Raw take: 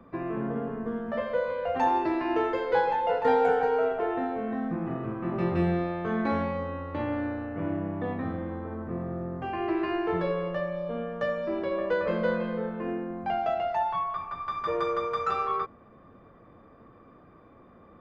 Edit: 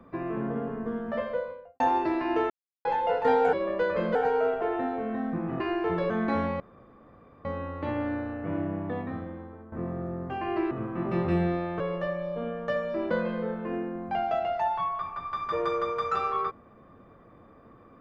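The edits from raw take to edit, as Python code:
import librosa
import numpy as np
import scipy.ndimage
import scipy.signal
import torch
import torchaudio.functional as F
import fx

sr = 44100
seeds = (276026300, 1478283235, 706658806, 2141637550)

y = fx.studio_fade_out(x, sr, start_s=1.15, length_s=0.65)
y = fx.edit(y, sr, fx.silence(start_s=2.5, length_s=0.35),
    fx.swap(start_s=4.98, length_s=1.09, other_s=9.83, other_length_s=0.5),
    fx.insert_room_tone(at_s=6.57, length_s=0.85),
    fx.fade_out_to(start_s=7.92, length_s=0.92, floor_db=-14.0),
    fx.move(start_s=11.64, length_s=0.62, to_s=3.53), tone=tone)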